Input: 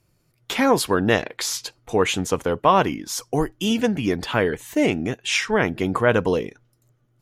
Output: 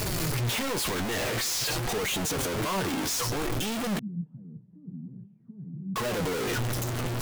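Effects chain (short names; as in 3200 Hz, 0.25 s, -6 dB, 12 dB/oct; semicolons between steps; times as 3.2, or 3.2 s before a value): infinite clipping; flange 0.5 Hz, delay 4.5 ms, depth 7.6 ms, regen +52%; 3.99–5.96 Butterworth band-pass 170 Hz, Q 3; gain -2.5 dB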